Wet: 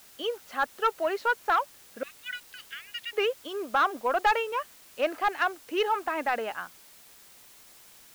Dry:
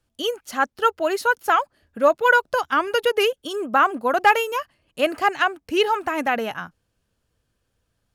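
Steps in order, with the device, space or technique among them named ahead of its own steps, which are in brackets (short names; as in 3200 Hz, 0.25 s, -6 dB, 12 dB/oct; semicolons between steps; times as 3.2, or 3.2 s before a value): 2.03–3.13 steep high-pass 1900 Hz 48 dB/oct; tape answering machine (BPF 380–2900 Hz; soft clip -11.5 dBFS, distortion -14 dB; wow and flutter 24 cents; white noise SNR 23 dB); gain -4 dB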